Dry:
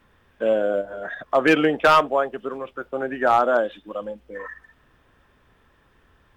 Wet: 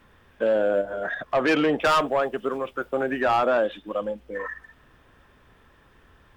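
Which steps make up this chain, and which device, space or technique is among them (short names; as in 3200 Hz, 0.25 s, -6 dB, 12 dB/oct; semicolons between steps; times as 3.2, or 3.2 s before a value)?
1.8–3.45 high shelf 6300 Hz +8.5 dB; soft clipper into limiter (soft clip -14.5 dBFS, distortion -12 dB; limiter -18.5 dBFS, peak gain reduction 4 dB); gain +3 dB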